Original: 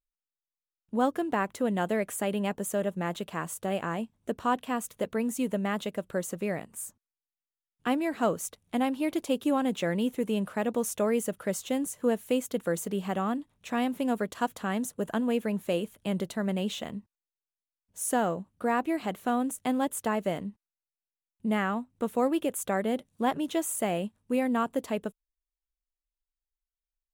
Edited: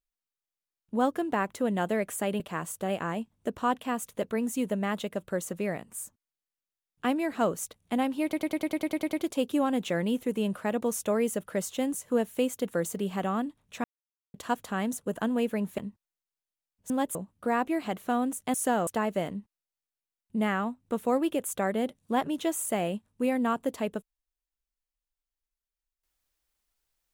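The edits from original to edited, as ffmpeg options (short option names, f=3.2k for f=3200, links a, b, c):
-filter_complex "[0:a]asplit=18[a][b][c][d][e][f][g][h][i][j][k][l][m][n][o][p][q][r];[a]atrim=end=2.402[s];[b]atrim=start=3.218:end=9.152[t];[c]atrim=start=9.048:end=9.152[u];[d]atrim=start=9.048:end=9.152[v];[e]atrim=start=9.048:end=9.152[w];[f]atrim=start=9.048:end=9.152[x];[g]atrim=start=9.048:end=9.152[y];[h]atrim=start=9.048:end=9.152[z];[i]atrim=start=9.048:end=9.152[aa];[j]atrim=start=9.048:end=9.152[ab];[k]atrim=start=9.048:end=13.76,asetpts=PTS-STARTPTS,afade=t=out:st=4.708:d=0.004:c=hsin[ac];[l]atrim=start=13.76:end=14.26,asetpts=PTS-STARTPTS,volume=0[ad];[m]atrim=start=14.26:end=15.702,asetpts=PTS-STARTPTS,afade=t=in:d=0.004:c=hsin[ae];[n]atrim=start=16.878:end=18.002[af];[o]atrim=start=19.718:end=19.972[ag];[p]atrim=start=18.328:end=19.722[ah];[q]atrim=start=17.998:end=18.332[ai];[r]atrim=start=19.968[aj];[s][t]acrossfade=d=0.004:c1=hsin:c2=hsin[ak];[ak][u]acrossfade=d=0.004:c1=hsin:c2=hsin[al];[al][v]acrossfade=d=0.004:c1=hsin:c2=hsin[am];[am][w]acrossfade=d=0.004:c1=hsin:c2=hsin[an];[an][x]acrossfade=d=0.004:c1=hsin:c2=hsin[ao];[ao][y]acrossfade=d=0.004:c1=hsin:c2=hsin[ap];[ap][z]acrossfade=d=0.004:c1=hsin:c2=hsin[aq];[aq][aa]acrossfade=d=0.004:c1=hsin:c2=hsin[ar];[ar][ab]acrossfade=d=0.004:c1=hsin:c2=hsin[as];[ac][ad][ae]concat=n=3:v=0:a=1[at];[as][at]acrossfade=d=0.004:c1=hsin:c2=hsin[au];[au][af]acrossfade=d=0.004:c1=hsin:c2=hsin[av];[av][ag]acrossfade=d=0.004:c1=hsin:c2=hsin[aw];[aw][ah]acrossfade=d=0.004:c1=hsin:c2=hsin[ax];[ax][ai]acrossfade=d=0.004:c1=hsin:c2=hsin[ay];[ay][aj]acrossfade=d=0.004:c1=hsin:c2=hsin"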